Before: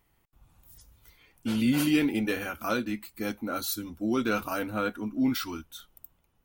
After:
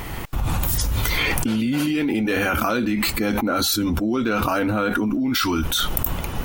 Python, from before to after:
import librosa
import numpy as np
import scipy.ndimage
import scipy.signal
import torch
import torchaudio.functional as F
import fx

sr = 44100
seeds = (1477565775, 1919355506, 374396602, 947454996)

y = fx.recorder_agc(x, sr, target_db=-22.0, rise_db_per_s=6.2, max_gain_db=30)
y = fx.high_shelf(y, sr, hz=6800.0, db=fx.steps((0.0, -6.5), (2.93, -11.5), (4.73, -5.5)))
y = fx.env_flatten(y, sr, amount_pct=100)
y = y * 10.0 ** (-1.0 / 20.0)